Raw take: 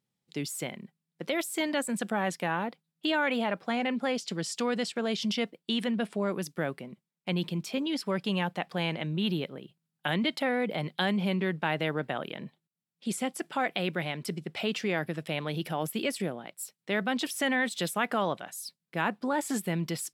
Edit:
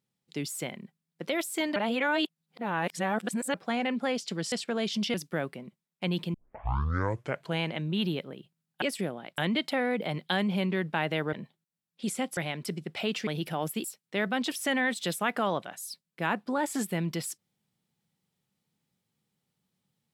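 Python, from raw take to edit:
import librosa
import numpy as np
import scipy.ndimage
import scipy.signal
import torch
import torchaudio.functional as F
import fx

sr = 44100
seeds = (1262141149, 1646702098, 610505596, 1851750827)

y = fx.edit(x, sr, fx.reverse_span(start_s=1.76, length_s=1.78),
    fx.cut(start_s=4.52, length_s=0.28),
    fx.cut(start_s=5.42, length_s=0.97),
    fx.tape_start(start_s=7.59, length_s=1.27),
    fx.cut(start_s=12.02, length_s=0.34),
    fx.cut(start_s=13.4, length_s=0.57),
    fx.cut(start_s=14.87, length_s=0.59),
    fx.move(start_s=16.03, length_s=0.56, to_s=10.07), tone=tone)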